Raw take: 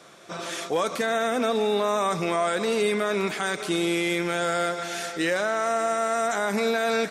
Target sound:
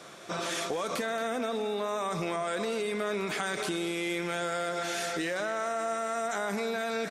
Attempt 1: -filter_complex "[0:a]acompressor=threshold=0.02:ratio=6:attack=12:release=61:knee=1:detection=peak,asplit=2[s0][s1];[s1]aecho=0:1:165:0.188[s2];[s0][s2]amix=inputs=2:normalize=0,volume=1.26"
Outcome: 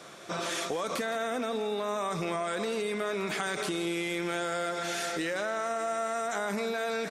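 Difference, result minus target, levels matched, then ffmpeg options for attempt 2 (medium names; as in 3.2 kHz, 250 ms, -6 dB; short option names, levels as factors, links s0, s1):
echo 60 ms early
-filter_complex "[0:a]acompressor=threshold=0.02:ratio=6:attack=12:release=61:knee=1:detection=peak,asplit=2[s0][s1];[s1]aecho=0:1:225:0.188[s2];[s0][s2]amix=inputs=2:normalize=0,volume=1.26"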